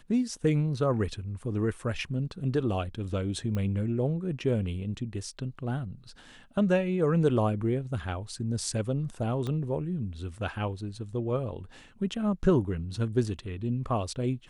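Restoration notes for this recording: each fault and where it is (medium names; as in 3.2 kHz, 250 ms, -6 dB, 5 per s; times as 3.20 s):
3.55 s: pop -21 dBFS
9.47 s: pop -22 dBFS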